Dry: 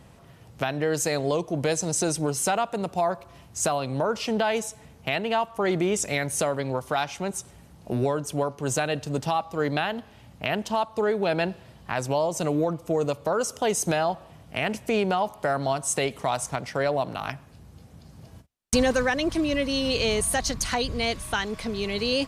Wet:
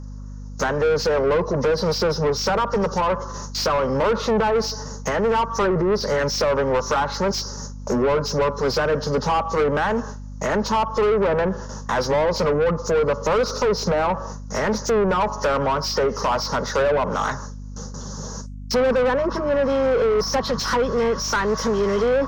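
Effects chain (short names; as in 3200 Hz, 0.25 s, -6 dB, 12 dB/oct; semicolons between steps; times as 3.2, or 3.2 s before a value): nonlinear frequency compression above 1800 Hz 1.5:1; treble ducked by the level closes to 1100 Hz, closed at -20 dBFS; gate with hold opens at -39 dBFS; resonant high shelf 4500 Hz +11 dB, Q 3; in parallel at -2.5 dB: compressor, threshold -37 dBFS, peak gain reduction 18 dB; on the sum: fixed phaser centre 470 Hz, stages 8; overdrive pedal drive 30 dB, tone 2100 Hz, clips at -8 dBFS; hum 50 Hz, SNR 13 dB; gain -3 dB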